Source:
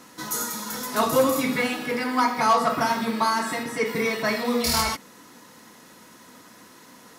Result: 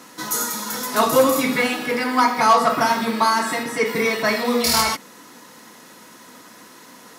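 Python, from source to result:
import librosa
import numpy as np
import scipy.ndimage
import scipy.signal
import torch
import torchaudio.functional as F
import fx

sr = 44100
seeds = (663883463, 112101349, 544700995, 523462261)

y = fx.highpass(x, sr, hz=180.0, slope=6)
y = y * 10.0 ** (5.0 / 20.0)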